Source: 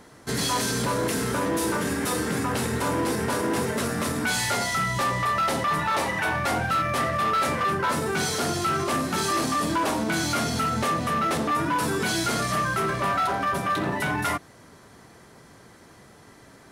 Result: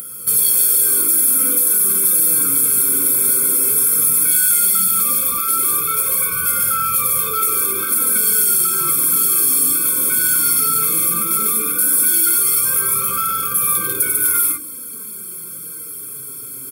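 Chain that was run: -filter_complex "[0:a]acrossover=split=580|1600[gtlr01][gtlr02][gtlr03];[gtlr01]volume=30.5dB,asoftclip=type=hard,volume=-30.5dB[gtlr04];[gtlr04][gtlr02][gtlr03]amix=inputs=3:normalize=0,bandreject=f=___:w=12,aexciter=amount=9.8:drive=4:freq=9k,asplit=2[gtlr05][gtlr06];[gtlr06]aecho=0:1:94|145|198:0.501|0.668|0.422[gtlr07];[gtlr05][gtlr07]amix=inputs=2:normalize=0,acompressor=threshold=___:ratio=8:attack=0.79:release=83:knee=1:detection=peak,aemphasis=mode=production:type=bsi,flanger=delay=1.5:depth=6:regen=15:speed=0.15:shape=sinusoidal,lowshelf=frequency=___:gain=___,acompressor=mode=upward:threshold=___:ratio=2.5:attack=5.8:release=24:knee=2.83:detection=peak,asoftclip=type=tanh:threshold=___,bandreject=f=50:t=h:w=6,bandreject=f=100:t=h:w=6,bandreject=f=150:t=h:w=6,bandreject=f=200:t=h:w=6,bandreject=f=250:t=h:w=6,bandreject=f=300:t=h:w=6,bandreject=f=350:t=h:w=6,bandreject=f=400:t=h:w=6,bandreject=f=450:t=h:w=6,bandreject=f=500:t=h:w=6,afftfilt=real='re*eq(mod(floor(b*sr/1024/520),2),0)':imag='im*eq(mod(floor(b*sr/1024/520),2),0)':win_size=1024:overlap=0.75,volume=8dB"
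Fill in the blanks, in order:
1.2k, -22dB, 310, 5.5, -35dB, -10dB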